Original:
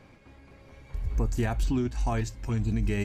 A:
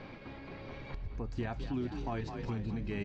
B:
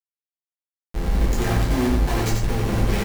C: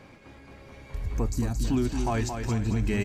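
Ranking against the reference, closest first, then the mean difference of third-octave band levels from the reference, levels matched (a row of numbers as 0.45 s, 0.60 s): C, A, B; 4.0 dB, 7.5 dB, 12.5 dB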